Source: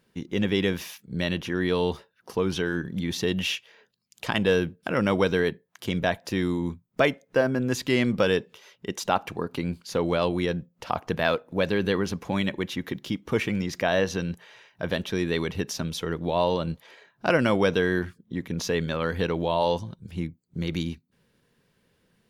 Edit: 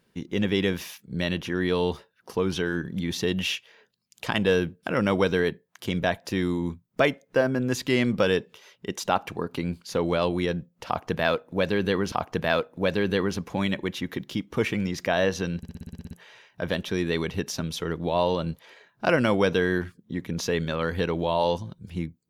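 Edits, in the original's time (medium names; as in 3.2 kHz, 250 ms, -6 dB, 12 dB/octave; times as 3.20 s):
10.87–12.12 s: loop, 2 plays
14.32 s: stutter 0.06 s, 10 plays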